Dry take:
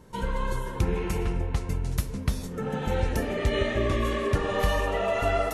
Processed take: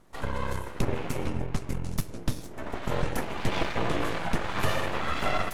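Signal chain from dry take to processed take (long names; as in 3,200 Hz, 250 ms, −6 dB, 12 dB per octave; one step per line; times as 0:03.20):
harmonic generator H 7 −24 dB, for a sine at −13 dBFS
full-wave rectification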